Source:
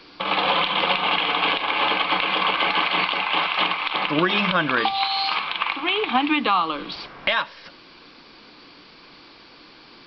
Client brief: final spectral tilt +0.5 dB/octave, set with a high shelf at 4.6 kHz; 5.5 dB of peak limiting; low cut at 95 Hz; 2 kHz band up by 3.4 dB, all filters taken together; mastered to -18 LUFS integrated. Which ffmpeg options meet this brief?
-af "highpass=95,equalizer=f=2000:t=o:g=3.5,highshelf=f=4600:g=4,volume=1.26,alimiter=limit=0.398:level=0:latency=1"

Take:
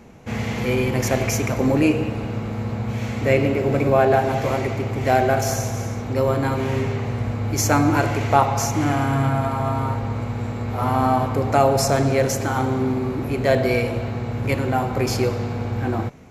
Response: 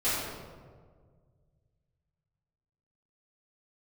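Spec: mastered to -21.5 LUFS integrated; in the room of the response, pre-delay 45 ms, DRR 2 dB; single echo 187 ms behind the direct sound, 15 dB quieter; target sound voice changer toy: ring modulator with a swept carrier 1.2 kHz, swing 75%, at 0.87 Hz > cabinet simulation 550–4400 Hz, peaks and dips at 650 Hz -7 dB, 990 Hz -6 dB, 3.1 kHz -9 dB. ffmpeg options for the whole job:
-filter_complex "[0:a]aecho=1:1:187:0.178,asplit=2[s0][s1];[1:a]atrim=start_sample=2205,adelay=45[s2];[s1][s2]afir=irnorm=-1:irlink=0,volume=0.224[s3];[s0][s3]amix=inputs=2:normalize=0,aeval=exprs='val(0)*sin(2*PI*1200*n/s+1200*0.75/0.87*sin(2*PI*0.87*n/s))':c=same,highpass=550,equalizer=f=650:t=q:w=4:g=-7,equalizer=f=990:t=q:w=4:g=-6,equalizer=f=3100:t=q:w=4:g=-9,lowpass=f=4400:w=0.5412,lowpass=f=4400:w=1.3066,volume=1.06"

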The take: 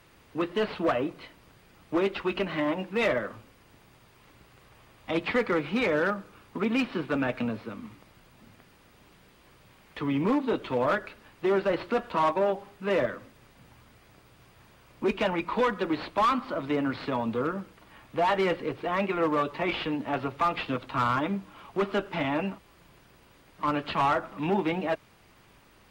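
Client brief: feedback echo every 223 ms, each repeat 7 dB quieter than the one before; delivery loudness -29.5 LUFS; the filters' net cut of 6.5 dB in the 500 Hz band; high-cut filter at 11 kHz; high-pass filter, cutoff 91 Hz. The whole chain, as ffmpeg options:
-af "highpass=91,lowpass=11000,equalizer=f=500:t=o:g=-8.5,aecho=1:1:223|446|669|892|1115:0.447|0.201|0.0905|0.0407|0.0183,volume=1.19"

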